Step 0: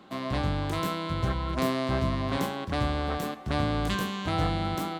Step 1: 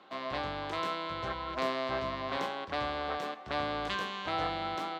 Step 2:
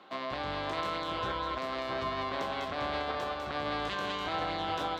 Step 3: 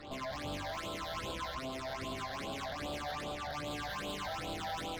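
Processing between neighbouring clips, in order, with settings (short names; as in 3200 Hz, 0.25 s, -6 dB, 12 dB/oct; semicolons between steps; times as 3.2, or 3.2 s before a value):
three-band isolator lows -16 dB, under 390 Hz, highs -21 dB, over 5600 Hz; gain -1.5 dB
split-band echo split 1700 Hz, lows 0.417 s, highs 0.2 s, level -6 dB; limiter -26 dBFS, peak gain reduction 8.5 dB; gain +2 dB
reverse echo 0.366 s -15 dB; tube stage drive 43 dB, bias 0.7; phaser stages 8, 2.5 Hz, lowest notch 320–1900 Hz; gain +8 dB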